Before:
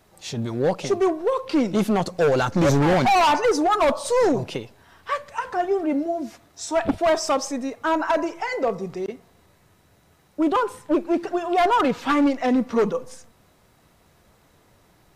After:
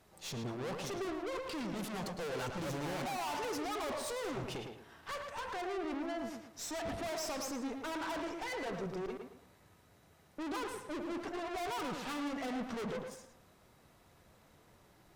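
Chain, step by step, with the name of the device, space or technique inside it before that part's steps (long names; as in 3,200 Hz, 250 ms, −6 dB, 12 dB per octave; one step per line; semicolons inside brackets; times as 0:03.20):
rockabilly slapback (tube saturation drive 35 dB, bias 0.65; tape delay 110 ms, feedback 35%, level −3.5 dB, low-pass 2,900 Hz)
level −3.5 dB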